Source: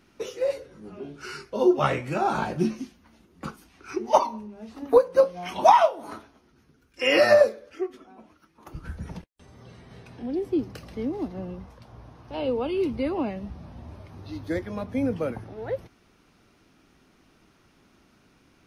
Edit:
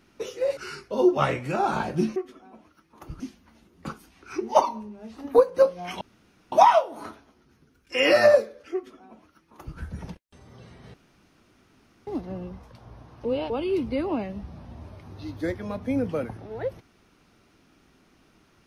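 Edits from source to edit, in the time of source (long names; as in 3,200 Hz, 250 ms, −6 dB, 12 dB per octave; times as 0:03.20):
0:00.57–0:01.19: remove
0:05.59: splice in room tone 0.51 s
0:07.81–0:08.85: duplicate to 0:02.78
0:10.01–0:11.14: fill with room tone
0:12.32–0:12.57: reverse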